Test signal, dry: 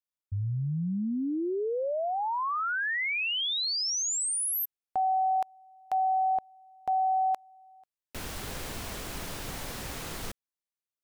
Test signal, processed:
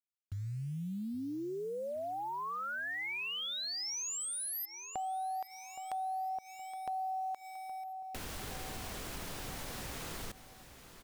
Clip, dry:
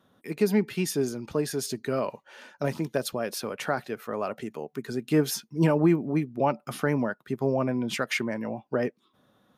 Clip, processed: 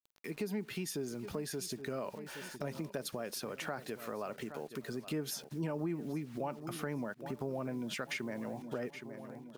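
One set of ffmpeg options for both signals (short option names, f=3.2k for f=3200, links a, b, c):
-af "acrusher=bits=8:mix=0:aa=0.000001,aecho=1:1:819|1638|2457|3276:0.112|0.0505|0.0227|0.0102,acompressor=threshold=-44dB:ratio=2.5:attack=16:release=93:knee=1:detection=rms,volume=1dB"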